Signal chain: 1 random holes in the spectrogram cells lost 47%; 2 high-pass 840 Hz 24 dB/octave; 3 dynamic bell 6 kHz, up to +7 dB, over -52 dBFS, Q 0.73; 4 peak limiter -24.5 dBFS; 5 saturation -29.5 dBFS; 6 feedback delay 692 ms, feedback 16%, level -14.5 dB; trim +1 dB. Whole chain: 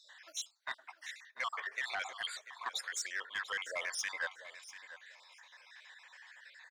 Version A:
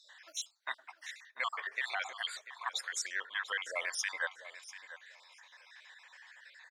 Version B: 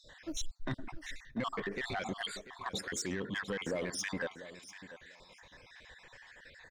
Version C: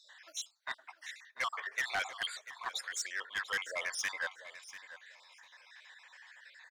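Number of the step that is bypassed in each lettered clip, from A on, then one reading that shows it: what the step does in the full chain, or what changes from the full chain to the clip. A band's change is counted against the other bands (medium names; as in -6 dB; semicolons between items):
5, distortion -15 dB; 2, 500 Hz band +11.0 dB; 4, momentary loudness spread change +2 LU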